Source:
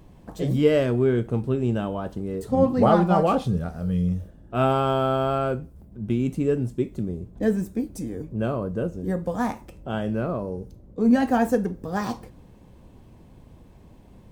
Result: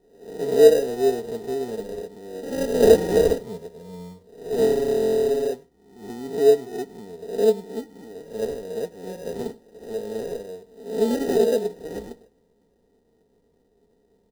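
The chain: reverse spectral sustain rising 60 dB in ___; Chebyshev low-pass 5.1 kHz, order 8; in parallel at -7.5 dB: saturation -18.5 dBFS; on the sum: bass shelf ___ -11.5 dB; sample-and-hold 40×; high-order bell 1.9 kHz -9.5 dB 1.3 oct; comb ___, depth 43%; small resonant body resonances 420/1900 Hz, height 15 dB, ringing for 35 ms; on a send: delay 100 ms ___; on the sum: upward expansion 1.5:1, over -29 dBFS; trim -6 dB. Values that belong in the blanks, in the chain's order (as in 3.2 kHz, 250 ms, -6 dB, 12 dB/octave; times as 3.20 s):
0.83 s, 120 Hz, 4.3 ms, -18 dB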